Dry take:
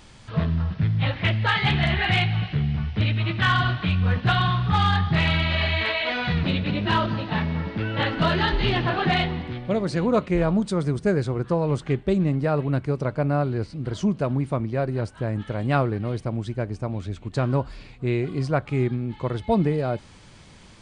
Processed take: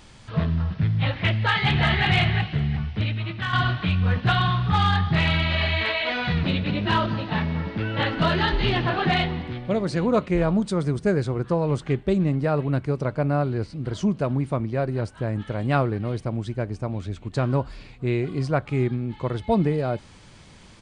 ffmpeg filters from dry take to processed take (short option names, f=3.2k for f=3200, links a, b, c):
-filter_complex "[0:a]asplit=2[a][b];[b]afade=t=in:st=1.39:d=0.01,afade=t=out:st=2.05:d=0.01,aecho=0:1:360|720|1080:0.595662|0.119132|0.0238265[c];[a][c]amix=inputs=2:normalize=0,asplit=2[d][e];[d]atrim=end=3.53,asetpts=PTS-STARTPTS,afade=t=out:st=2.67:d=0.86:silence=0.375837[f];[e]atrim=start=3.53,asetpts=PTS-STARTPTS,afade=t=in:d=0.004:c=hsin:silence=0.375837[g];[f][g]concat=n=2:v=0:a=1"